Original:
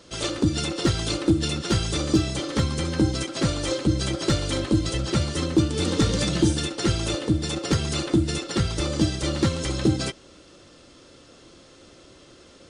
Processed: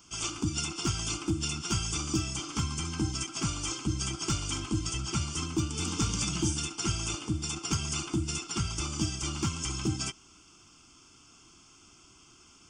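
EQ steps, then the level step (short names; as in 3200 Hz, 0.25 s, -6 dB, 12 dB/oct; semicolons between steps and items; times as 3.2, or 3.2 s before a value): tilt shelf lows -6.5 dB, about 1300 Hz; bell 3300 Hz -6 dB 2.3 oct; fixed phaser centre 2700 Hz, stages 8; -1.0 dB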